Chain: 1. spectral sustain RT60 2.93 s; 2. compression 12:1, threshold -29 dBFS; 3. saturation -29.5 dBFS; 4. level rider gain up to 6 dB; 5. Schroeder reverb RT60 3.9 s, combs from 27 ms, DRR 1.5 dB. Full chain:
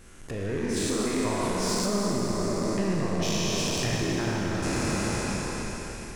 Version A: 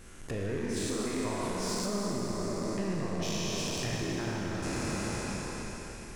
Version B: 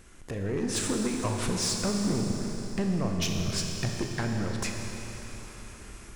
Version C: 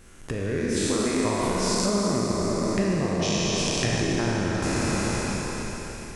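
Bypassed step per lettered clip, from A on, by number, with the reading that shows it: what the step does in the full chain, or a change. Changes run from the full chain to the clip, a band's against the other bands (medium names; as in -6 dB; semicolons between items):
4, momentary loudness spread change -1 LU; 1, 1 kHz band -4.0 dB; 3, distortion -13 dB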